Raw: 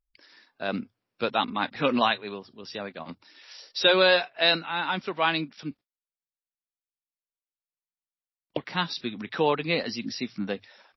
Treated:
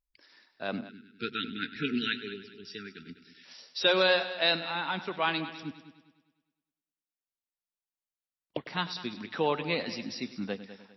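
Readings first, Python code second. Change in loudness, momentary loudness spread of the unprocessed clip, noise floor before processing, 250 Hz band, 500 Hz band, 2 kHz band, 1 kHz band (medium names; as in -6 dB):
-4.5 dB, 18 LU, under -85 dBFS, -4.0 dB, -5.0 dB, -4.0 dB, -6.5 dB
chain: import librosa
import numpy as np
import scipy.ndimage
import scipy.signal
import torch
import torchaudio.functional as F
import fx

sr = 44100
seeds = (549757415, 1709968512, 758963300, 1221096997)

y = fx.echo_heads(x, sr, ms=101, heads='first and second', feedback_pct=41, wet_db=-16.0)
y = fx.spec_erase(y, sr, start_s=0.89, length_s=2.56, low_hz=470.0, high_hz=1300.0)
y = F.gain(torch.from_numpy(y), -4.5).numpy()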